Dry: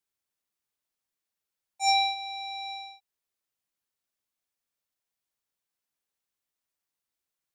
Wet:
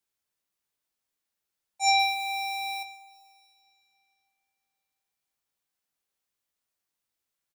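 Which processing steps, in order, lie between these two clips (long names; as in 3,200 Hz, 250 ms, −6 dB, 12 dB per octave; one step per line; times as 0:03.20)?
0:01.99–0:02.83: converter with a step at zero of −35.5 dBFS
double-tracking delay 20 ms −9 dB
convolution reverb RT60 3.0 s, pre-delay 103 ms, DRR 16.5 dB
level +1.5 dB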